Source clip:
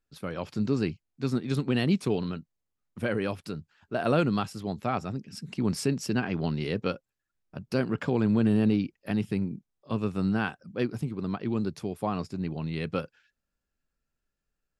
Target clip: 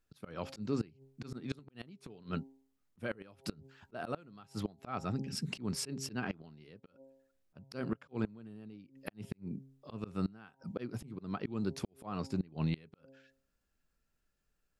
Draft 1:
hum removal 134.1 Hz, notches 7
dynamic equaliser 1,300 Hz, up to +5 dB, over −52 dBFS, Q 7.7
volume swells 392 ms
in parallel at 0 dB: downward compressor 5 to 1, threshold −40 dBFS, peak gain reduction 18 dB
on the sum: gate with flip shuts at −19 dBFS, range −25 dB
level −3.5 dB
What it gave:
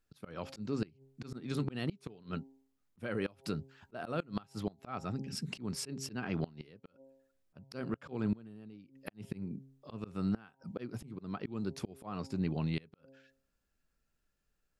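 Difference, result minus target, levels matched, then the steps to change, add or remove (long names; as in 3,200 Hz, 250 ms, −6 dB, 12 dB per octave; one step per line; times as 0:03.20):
downward compressor: peak gain reduction +6 dB
change: downward compressor 5 to 1, threshold −32.5 dBFS, peak gain reduction 12 dB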